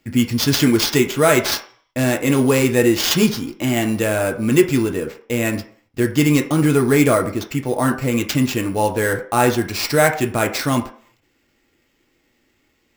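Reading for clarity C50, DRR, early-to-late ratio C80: 11.5 dB, 3.0 dB, 15.5 dB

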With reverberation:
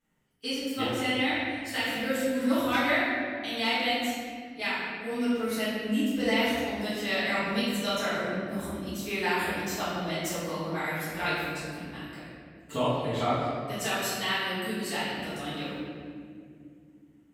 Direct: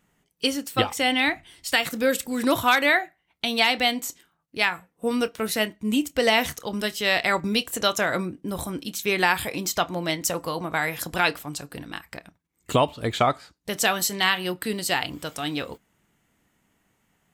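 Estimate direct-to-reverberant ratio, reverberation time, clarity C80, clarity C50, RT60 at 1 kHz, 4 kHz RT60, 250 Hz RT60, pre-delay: -14.0 dB, 2.3 s, 0.0 dB, -2.5 dB, 1.7 s, 1.3 s, 4.1 s, 3 ms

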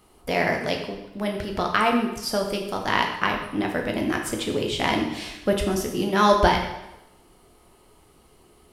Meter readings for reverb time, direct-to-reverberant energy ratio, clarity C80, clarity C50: 0.95 s, 1.5 dB, 8.0 dB, 5.5 dB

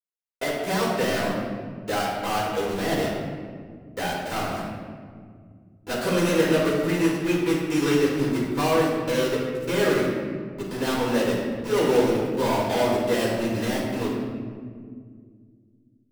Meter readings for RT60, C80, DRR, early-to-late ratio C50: 2.0 s, 2.5 dB, -7.0 dB, 0.5 dB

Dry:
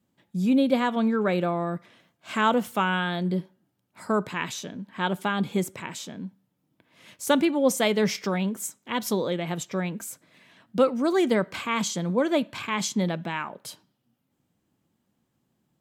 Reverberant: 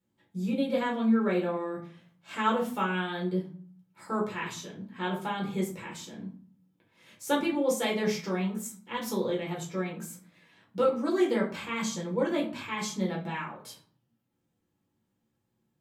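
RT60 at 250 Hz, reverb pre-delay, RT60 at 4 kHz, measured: 0.65 s, 6 ms, 0.30 s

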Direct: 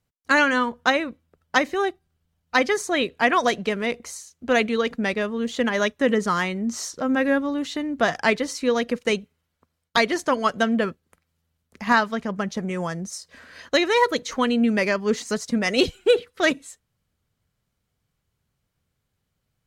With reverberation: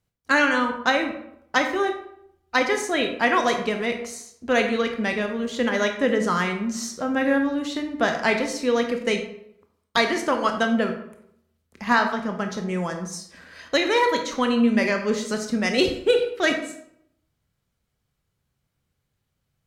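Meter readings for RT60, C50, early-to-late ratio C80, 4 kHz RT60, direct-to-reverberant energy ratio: 0.70 s, 7.5 dB, 10.5 dB, 0.50 s, 4.5 dB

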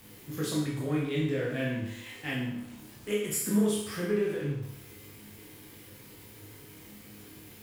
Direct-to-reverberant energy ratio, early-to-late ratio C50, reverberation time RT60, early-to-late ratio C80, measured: -4.5 dB, 2.5 dB, 0.75 s, 6.0 dB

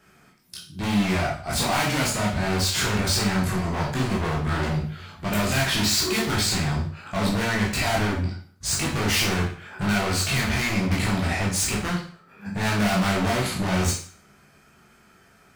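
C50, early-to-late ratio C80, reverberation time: 5.5 dB, 10.0 dB, 0.45 s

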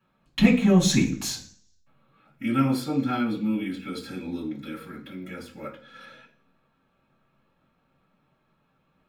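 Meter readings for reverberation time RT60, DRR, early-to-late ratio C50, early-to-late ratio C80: 0.45 s, -8.5 dB, 9.5 dB, 14.0 dB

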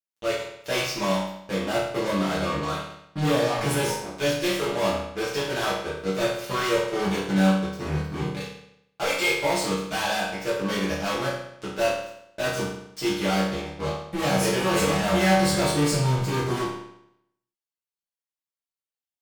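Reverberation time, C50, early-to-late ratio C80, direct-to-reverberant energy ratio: 0.75 s, 2.0 dB, 5.5 dB, -9.5 dB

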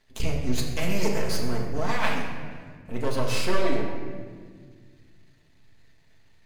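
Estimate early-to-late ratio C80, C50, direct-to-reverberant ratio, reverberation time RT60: 5.0 dB, 3.5 dB, -2.0 dB, 1.7 s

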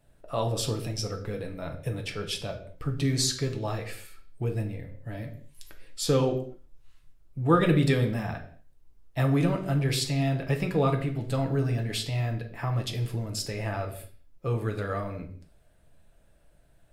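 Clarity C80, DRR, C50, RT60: 14.5 dB, 3.5 dB, 11.0 dB, no single decay rate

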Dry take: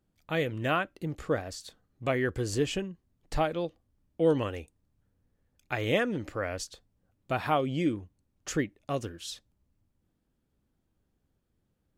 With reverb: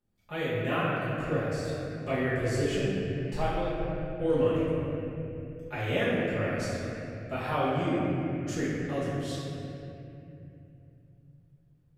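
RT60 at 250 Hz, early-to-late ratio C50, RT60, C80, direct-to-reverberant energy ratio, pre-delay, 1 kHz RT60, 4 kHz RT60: 4.2 s, -3.5 dB, 2.8 s, -1.5 dB, -12.0 dB, 5 ms, 2.4 s, 2.0 s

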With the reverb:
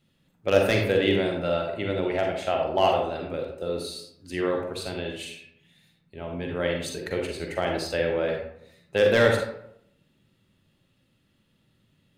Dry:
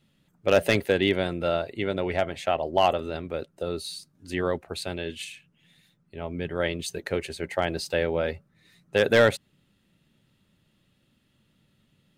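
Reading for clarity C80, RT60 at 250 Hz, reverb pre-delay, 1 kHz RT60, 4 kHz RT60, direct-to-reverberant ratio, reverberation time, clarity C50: 6.0 dB, 0.75 s, 38 ms, 0.70 s, 0.40 s, 1.0 dB, 0.75 s, 2.5 dB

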